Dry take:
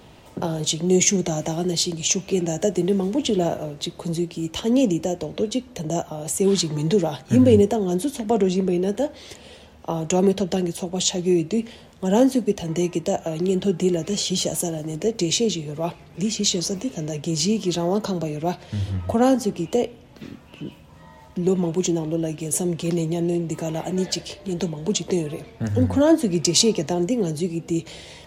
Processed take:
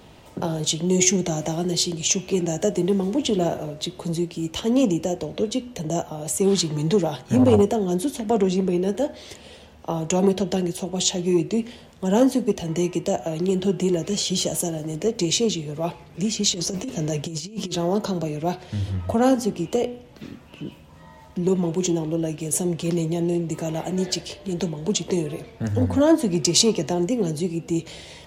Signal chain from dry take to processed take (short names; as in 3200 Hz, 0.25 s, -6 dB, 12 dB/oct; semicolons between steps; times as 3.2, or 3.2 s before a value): de-hum 122.3 Hz, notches 28; 16.54–17.75 negative-ratio compressor -27 dBFS, ratio -0.5; core saturation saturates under 360 Hz